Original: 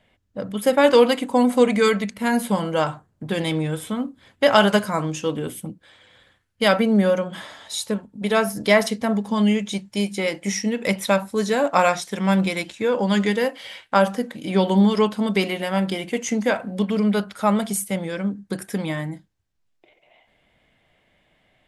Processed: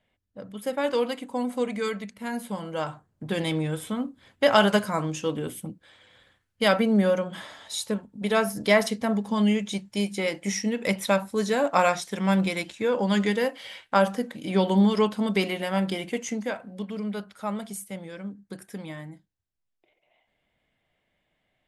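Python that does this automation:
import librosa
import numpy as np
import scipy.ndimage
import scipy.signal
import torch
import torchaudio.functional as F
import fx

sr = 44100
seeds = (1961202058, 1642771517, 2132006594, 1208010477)

y = fx.gain(x, sr, db=fx.line((2.58, -11.0), (3.29, -3.5), (16.07, -3.5), (16.62, -11.5)))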